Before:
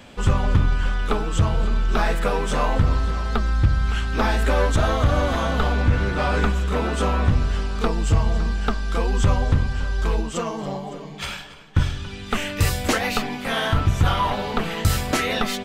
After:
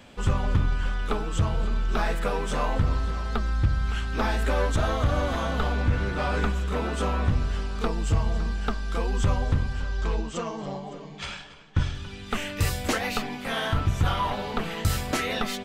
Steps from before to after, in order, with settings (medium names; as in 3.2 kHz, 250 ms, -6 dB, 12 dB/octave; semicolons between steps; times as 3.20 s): 9.82–11.95 s: low-pass 7.8 kHz 24 dB/octave; trim -5 dB